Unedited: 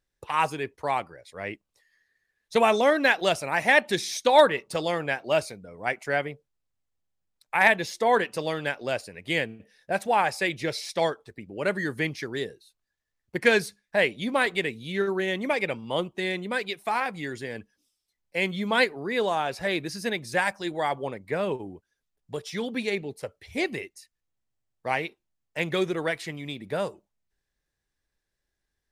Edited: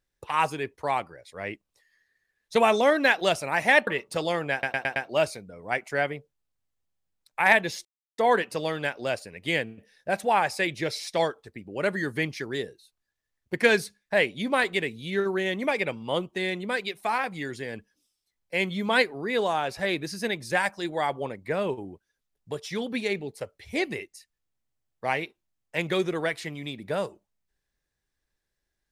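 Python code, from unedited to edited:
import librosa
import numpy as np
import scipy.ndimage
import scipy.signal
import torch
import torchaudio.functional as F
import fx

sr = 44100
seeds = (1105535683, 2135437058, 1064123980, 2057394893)

y = fx.edit(x, sr, fx.cut(start_s=3.87, length_s=0.59),
    fx.stutter(start_s=5.11, slice_s=0.11, count=5),
    fx.insert_silence(at_s=8.0, length_s=0.33), tone=tone)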